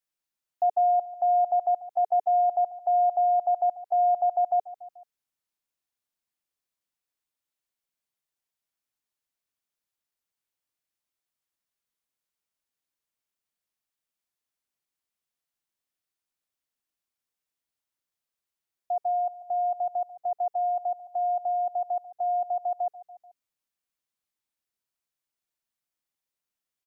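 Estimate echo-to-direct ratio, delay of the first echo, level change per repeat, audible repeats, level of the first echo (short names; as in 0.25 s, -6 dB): -15.5 dB, 0.145 s, -4.5 dB, 3, -17.0 dB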